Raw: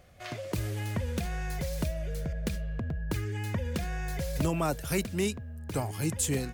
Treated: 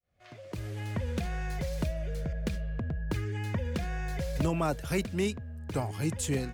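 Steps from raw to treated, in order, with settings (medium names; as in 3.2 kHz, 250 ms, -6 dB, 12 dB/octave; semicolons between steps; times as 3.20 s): fade-in on the opening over 1.10 s; treble shelf 7.8 kHz -11 dB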